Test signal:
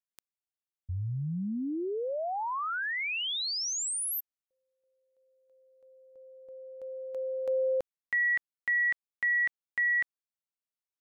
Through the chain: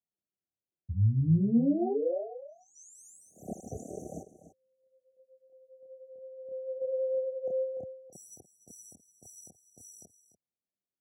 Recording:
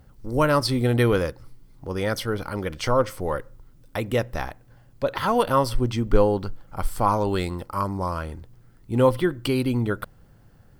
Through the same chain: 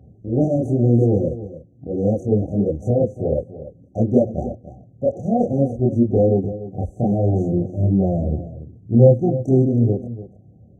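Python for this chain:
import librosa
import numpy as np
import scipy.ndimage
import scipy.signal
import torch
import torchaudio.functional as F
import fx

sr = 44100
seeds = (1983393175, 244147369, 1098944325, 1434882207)

p1 = fx.self_delay(x, sr, depth_ms=0.74)
p2 = scipy.signal.sosfilt(scipy.signal.butter(4, 92.0, 'highpass', fs=sr, output='sos'), p1)
p3 = fx.low_shelf(p2, sr, hz=430.0, db=9.0)
p4 = fx.chorus_voices(p3, sr, voices=6, hz=1.0, base_ms=28, depth_ms=3.0, mix_pct=55)
p5 = fx.rider(p4, sr, range_db=4, speed_s=0.5)
p6 = p4 + (p5 * librosa.db_to_amplitude(2.0))
p7 = fx.brickwall_bandstop(p6, sr, low_hz=790.0, high_hz=5800.0)
p8 = fx.spacing_loss(p7, sr, db_at_10k=28)
p9 = p8 + fx.echo_single(p8, sr, ms=293, db=-14.0, dry=0)
y = p9 * librosa.db_to_amplitude(-1.5)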